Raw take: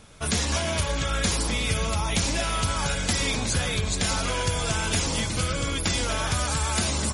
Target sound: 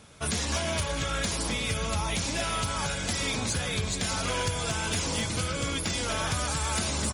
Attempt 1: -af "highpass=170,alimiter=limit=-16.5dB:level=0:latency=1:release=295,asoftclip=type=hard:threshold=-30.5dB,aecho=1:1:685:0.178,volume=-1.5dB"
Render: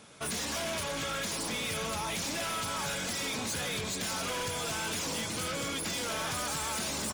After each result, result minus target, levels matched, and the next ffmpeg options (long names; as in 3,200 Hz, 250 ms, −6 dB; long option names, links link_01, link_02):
hard clipping: distortion +23 dB; 125 Hz band −7.0 dB
-af "highpass=170,alimiter=limit=-16.5dB:level=0:latency=1:release=295,asoftclip=type=hard:threshold=-19dB,aecho=1:1:685:0.178,volume=-1.5dB"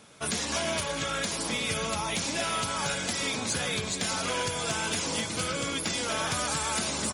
125 Hz band −6.5 dB
-af "highpass=63,alimiter=limit=-16.5dB:level=0:latency=1:release=295,asoftclip=type=hard:threshold=-19dB,aecho=1:1:685:0.178,volume=-1.5dB"